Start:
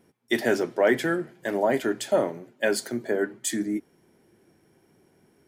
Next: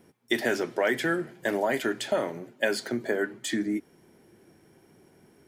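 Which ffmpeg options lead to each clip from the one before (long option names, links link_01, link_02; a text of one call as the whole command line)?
ffmpeg -i in.wav -filter_complex "[0:a]acrossover=split=1300|4600[link_01][link_02][link_03];[link_01]acompressor=threshold=-29dB:ratio=4[link_04];[link_02]acompressor=threshold=-31dB:ratio=4[link_05];[link_03]acompressor=threshold=-46dB:ratio=4[link_06];[link_04][link_05][link_06]amix=inputs=3:normalize=0,volume=3.5dB" out.wav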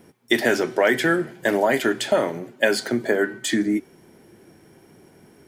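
ffmpeg -i in.wav -af "bandreject=frequency=379:width_type=h:width=4,bandreject=frequency=758:width_type=h:width=4,bandreject=frequency=1137:width_type=h:width=4,bandreject=frequency=1516:width_type=h:width=4,bandreject=frequency=1895:width_type=h:width=4,bandreject=frequency=2274:width_type=h:width=4,bandreject=frequency=2653:width_type=h:width=4,bandreject=frequency=3032:width_type=h:width=4,bandreject=frequency=3411:width_type=h:width=4,bandreject=frequency=3790:width_type=h:width=4,bandreject=frequency=4169:width_type=h:width=4,bandreject=frequency=4548:width_type=h:width=4,bandreject=frequency=4927:width_type=h:width=4,bandreject=frequency=5306:width_type=h:width=4,bandreject=frequency=5685:width_type=h:width=4,bandreject=frequency=6064:width_type=h:width=4,bandreject=frequency=6443:width_type=h:width=4,bandreject=frequency=6822:width_type=h:width=4,bandreject=frequency=7201:width_type=h:width=4,bandreject=frequency=7580:width_type=h:width=4,bandreject=frequency=7959:width_type=h:width=4,bandreject=frequency=8338:width_type=h:width=4,bandreject=frequency=8717:width_type=h:width=4,bandreject=frequency=9096:width_type=h:width=4,bandreject=frequency=9475:width_type=h:width=4,bandreject=frequency=9854:width_type=h:width=4,bandreject=frequency=10233:width_type=h:width=4,volume=7dB" out.wav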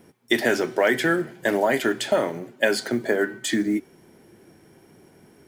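ffmpeg -i in.wav -af "acrusher=bits=9:mode=log:mix=0:aa=0.000001,volume=-1.5dB" out.wav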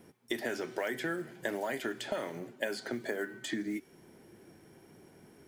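ffmpeg -i in.wav -filter_complex "[0:a]acrossover=split=1600|6000[link_01][link_02][link_03];[link_01]acompressor=threshold=-30dB:ratio=4[link_04];[link_02]acompressor=threshold=-38dB:ratio=4[link_05];[link_03]acompressor=threshold=-49dB:ratio=4[link_06];[link_04][link_05][link_06]amix=inputs=3:normalize=0,volume=-4.5dB" out.wav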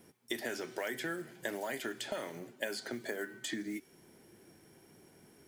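ffmpeg -i in.wav -af "highshelf=frequency=3000:gain=7,volume=-4dB" out.wav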